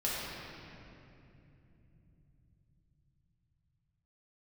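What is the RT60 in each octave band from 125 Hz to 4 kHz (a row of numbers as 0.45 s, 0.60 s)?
7.1 s, 5.5 s, 3.4 s, 2.4 s, 2.5 s, 1.9 s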